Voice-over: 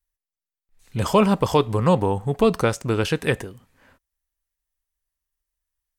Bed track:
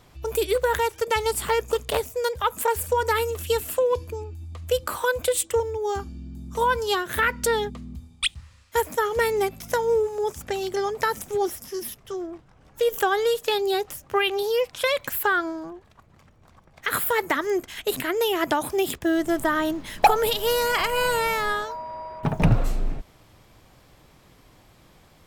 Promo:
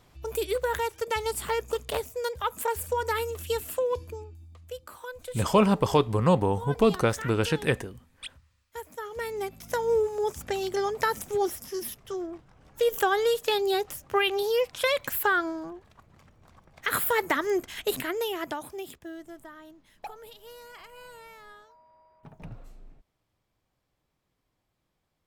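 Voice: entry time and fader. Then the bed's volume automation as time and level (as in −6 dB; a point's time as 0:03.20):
4.40 s, −3.5 dB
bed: 0:04.11 −5.5 dB
0:04.77 −16.5 dB
0:08.81 −16.5 dB
0:09.99 −2 dB
0:17.87 −2 dB
0:19.57 −24.5 dB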